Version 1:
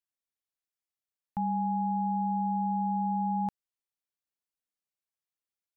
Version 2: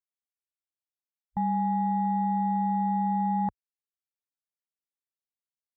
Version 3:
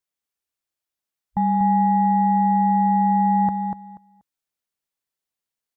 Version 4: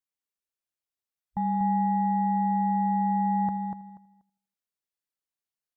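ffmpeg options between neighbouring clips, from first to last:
-af "afwtdn=0.01,volume=3dB"
-af "aecho=1:1:241|482|723:0.501|0.0902|0.0162,volume=7dB"
-filter_complex "[0:a]asplit=2[a][b];[b]adelay=82,lowpass=f=1.5k:p=1,volume=-18dB,asplit=2[c][d];[d]adelay=82,lowpass=f=1.5k:p=1,volume=0.53,asplit=2[e][f];[f]adelay=82,lowpass=f=1.5k:p=1,volume=0.53,asplit=2[g][h];[h]adelay=82,lowpass=f=1.5k:p=1,volume=0.53[i];[a][c][e][g][i]amix=inputs=5:normalize=0,volume=-7.5dB"

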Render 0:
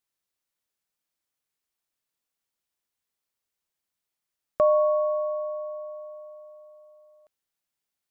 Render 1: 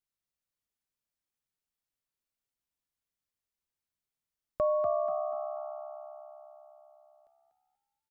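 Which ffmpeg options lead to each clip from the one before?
-filter_complex "[0:a]lowshelf=f=140:g=11.5,asplit=2[a][b];[b]asplit=4[c][d][e][f];[c]adelay=242,afreqshift=68,volume=-6.5dB[g];[d]adelay=484,afreqshift=136,volume=-15.4dB[h];[e]adelay=726,afreqshift=204,volume=-24.2dB[i];[f]adelay=968,afreqshift=272,volume=-33.1dB[j];[g][h][i][j]amix=inputs=4:normalize=0[k];[a][k]amix=inputs=2:normalize=0,volume=-8.5dB"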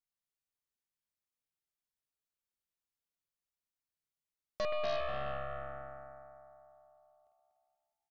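-af "aecho=1:1:50|125|237.5|406.2|659.4:0.631|0.398|0.251|0.158|0.1,aeval=exprs='0.106*(cos(1*acos(clip(val(0)/0.106,-1,1)))-cos(1*PI/2))+0.0237*(cos(8*acos(clip(val(0)/0.106,-1,1)))-cos(8*PI/2))':c=same,volume=-7.5dB"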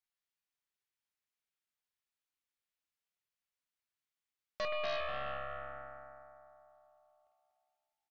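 -filter_complex "[0:a]equalizer=f=2.2k:w=0.48:g=8.5,asplit=2[a][b];[b]adelay=26,volume=-13dB[c];[a][c]amix=inputs=2:normalize=0,volume=-5.5dB"

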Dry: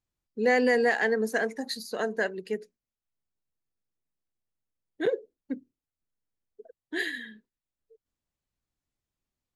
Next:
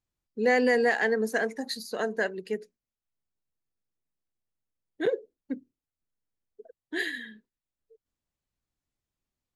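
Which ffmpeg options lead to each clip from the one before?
-af anull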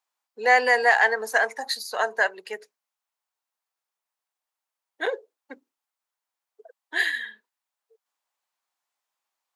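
-af "highpass=f=870:t=q:w=2.1,volume=6dB"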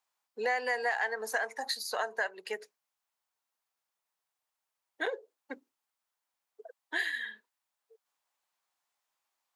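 -af "acompressor=threshold=-32dB:ratio=3"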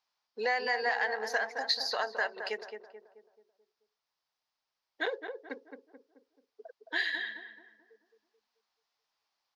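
-filter_complex "[0:a]highshelf=f=6.7k:t=q:w=3:g=-10.5,asplit=2[a][b];[b]adelay=217,lowpass=f=1.2k:p=1,volume=-6dB,asplit=2[c][d];[d]adelay=217,lowpass=f=1.2k:p=1,volume=0.49,asplit=2[e][f];[f]adelay=217,lowpass=f=1.2k:p=1,volume=0.49,asplit=2[g][h];[h]adelay=217,lowpass=f=1.2k:p=1,volume=0.49,asplit=2[i][j];[j]adelay=217,lowpass=f=1.2k:p=1,volume=0.49,asplit=2[k][l];[l]adelay=217,lowpass=f=1.2k:p=1,volume=0.49[m];[a][c][e][g][i][k][m]amix=inputs=7:normalize=0"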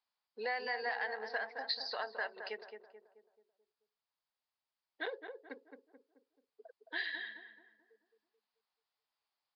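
-af "aresample=11025,aresample=44100,volume=-7dB"

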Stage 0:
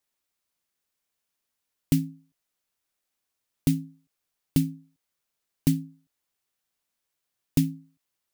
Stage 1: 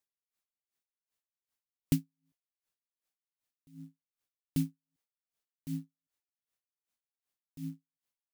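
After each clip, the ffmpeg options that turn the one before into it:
-af "acrusher=bits=7:mode=log:mix=0:aa=0.000001,aeval=exprs='val(0)*pow(10,-39*(0.5-0.5*cos(2*PI*2.6*n/s))/20)':c=same,volume=-5dB"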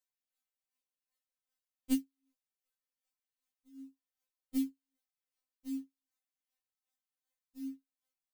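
-af "equalizer=f=210:w=3.8:g=-10.5,afftfilt=real='re*3.46*eq(mod(b,12),0)':imag='im*3.46*eq(mod(b,12),0)':win_size=2048:overlap=0.75"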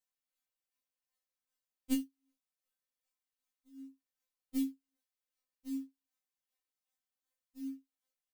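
-filter_complex "[0:a]aecho=1:1:3.9:0.65,asplit=2[a][b];[b]aecho=0:1:25|63:0.422|0.133[c];[a][c]amix=inputs=2:normalize=0,volume=-5dB"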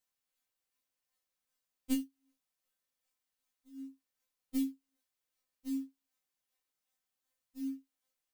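-af "acompressor=threshold=-39dB:ratio=1.5,volume=4dB"

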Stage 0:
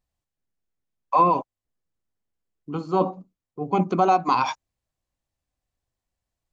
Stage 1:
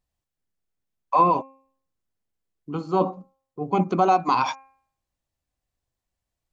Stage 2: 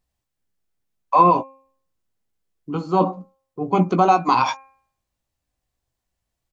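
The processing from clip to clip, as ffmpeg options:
-af "bandreject=f=267.7:t=h:w=4,bandreject=f=535.4:t=h:w=4,bandreject=f=803.1:t=h:w=4,bandreject=f=1.0708k:t=h:w=4,bandreject=f=1.3385k:t=h:w=4,bandreject=f=1.6062k:t=h:w=4,bandreject=f=1.8739k:t=h:w=4,bandreject=f=2.1416k:t=h:w=4,bandreject=f=2.4093k:t=h:w=4,bandreject=f=2.677k:t=h:w=4"
-filter_complex "[0:a]asplit=2[a][b];[b]adelay=17,volume=-9.5dB[c];[a][c]amix=inputs=2:normalize=0,volume=3.5dB"

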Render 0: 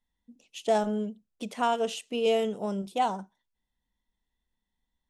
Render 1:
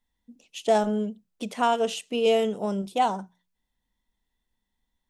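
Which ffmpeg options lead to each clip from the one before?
-af "bandreject=f=60:t=h:w=6,bandreject=f=120:t=h:w=6,bandreject=f=180:t=h:w=6,volume=3.5dB"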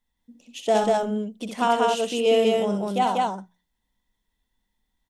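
-af "aecho=1:1:64.14|192.4:0.501|0.891"

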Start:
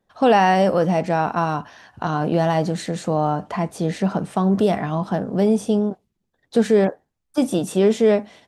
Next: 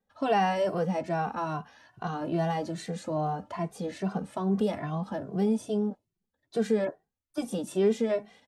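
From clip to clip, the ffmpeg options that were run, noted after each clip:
-filter_complex "[0:a]asplit=2[a][b];[b]adelay=2.1,afreqshift=2.4[c];[a][c]amix=inputs=2:normalize=1,volume=-7dB"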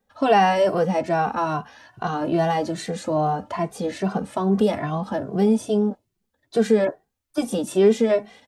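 -af "equalizer=f=170:t=o:w=0.34:g=-5,volume=8.5dB"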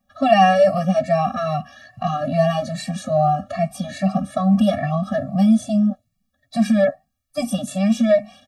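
-af "afftfilt=real='re*eq(mod(floor(b*sr/1024/270),2),0)':imag='im*eq(mod(floor(b*sr/1024/270),2),0)':win_size=1024:overlap=0.75,volume=5.5dB"

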